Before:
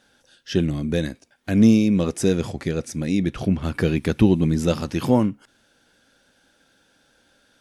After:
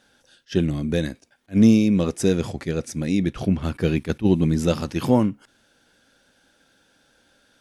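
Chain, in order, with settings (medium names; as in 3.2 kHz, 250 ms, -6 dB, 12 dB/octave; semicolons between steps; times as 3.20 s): attacks held to a fixed rise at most 450 dB/s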